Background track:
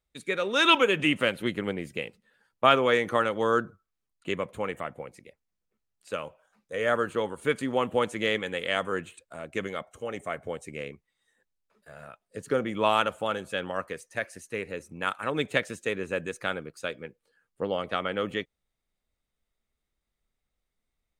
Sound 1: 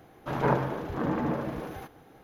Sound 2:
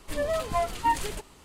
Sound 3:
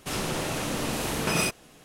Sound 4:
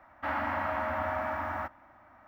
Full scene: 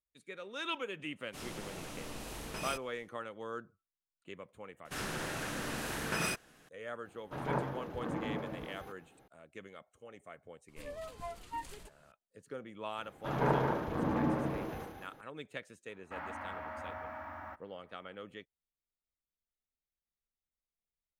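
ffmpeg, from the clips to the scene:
-filter_complex "[3:a]asplit=2[s0][s1];[1:a]asplit=2[s2][s3];[0:a]volume=0.133[s4];[s0]asubboost=boost=7:cutoff=70[s5];[s1]equalizer=f=1600:w=2.6:g=9.5[s6];[s3]aecho=1:1:72.89|177.8|218.7:0.562|0.316|0.501[s7];[s5]atrim=end=1.84,asetpts=PTS-STARTPTS,volume=0.178,afade=t=in:d=0.1,afade=t=out:st=1.74:d=0.1,adelay=1270[s8];[s6]atrim=end=1.84,asetpts=PTS-STARTPTS,volume=0.316,afade=t=in:d=0.004:c=hsin,afade=t=out:st=1.836:d=0.004:c=hsin,adelay=213885S[s9];[s2]atrim=end=2.23,asetpts=PTS-STARTPTS,volume=0.355,afade=t=in:d=0.004:c=hsin,afade=t=out:st=2.226:d=0.004:c=hsin,adelay=7050[s10];[2:a]atrim=end=1.44,asetpts=PTS-STARTPTS,volume=0.15,afade=t=in:d=0.004:c=hsin,afade=t=out:st=1.436:d=0.004:c=hsin,adelay=10680[s11];[s7]atrim=end=2.23,asetpts=PTS-STARTPTS,volume=0.531,afade=t=in:d=0.004:c=hsin,afade=t=out:st=2.226:d=0.004:c=hsin,adelay=12980[s12];[4:a]atrim=end=2.27,asetpts=PTS-STARTPTS,volume=0.266,afade=t=in:d=0.004:c=hsin,afade=t=out:st=2.266:d=0.004:c=hsin,adelay=700308S[s13];[s4][s8][s9][s10][s11][s12][s13]amix=inputs=7:normalize=0"

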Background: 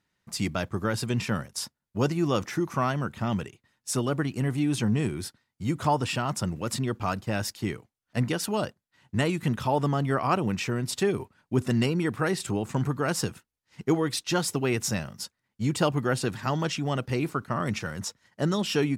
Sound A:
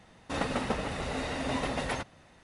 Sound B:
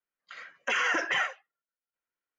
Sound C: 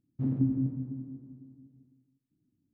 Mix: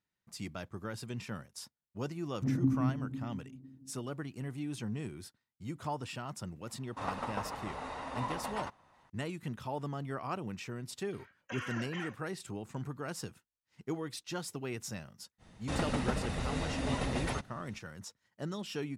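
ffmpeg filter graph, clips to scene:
-filter_complex "[1:a]asplit=2[s0][s1];[0:a]volume=0.224[s2];[s0]equalizer=f=1000:t=o:w=0.94:g=14.5[s3];[2:a]bandreject=f=2000:w=14[s4];[s1]bass=f=250:g=8,treble=f=4000:g=4[s5];[3:a]atrim=end=2.73,asetpts=PTS-STARTPTS,volume=0.794,afade=t=in:d=0.004:c=hsin,afade=t=out:st=2.726:d=0.004:c=hsin,adelay=2230[s6];[s3]atrim=end=2.43,asetpts=PTS-STARTPTS,volume=0.224,afade=t=in:d=0.004:c=hsin,afade=t=out:st=2.426:d=0.004:c=hsin,adelay=6670[s7];[s4]atrim=end=2.38,asetpts=PTS-STARTPTS,volume=0.188,afade=t=in:d=0.004:c=hsin,afade=t=out:st=2.376:d=0.004:c=hsin,adelay=477162S[s8];[s5]atrim=end=2.43,asetpts=PTS-STARTPTS,volume=0.562,afade=t=in:d=0.05,afade=t=out:st=2.38:d=0.05,adelay=15380[s9];[s2][s6][s7][s8][s9]amix=inputs=5:normalize=0"

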